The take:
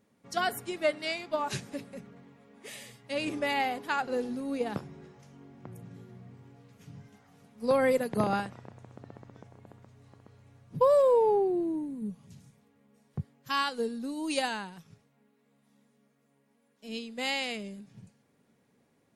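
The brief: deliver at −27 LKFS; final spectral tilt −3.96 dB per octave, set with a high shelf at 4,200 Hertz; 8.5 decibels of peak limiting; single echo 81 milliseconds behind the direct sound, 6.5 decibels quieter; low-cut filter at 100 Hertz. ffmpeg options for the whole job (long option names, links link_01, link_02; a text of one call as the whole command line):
ffmpeg -i in.wav -af "highpass=100,highshelf=frequency=4200:gain=6,alimiter=limit=-21.5dB:level=0:latency=1,aecho=1:1:81:0.473,volume=5dB" out.wav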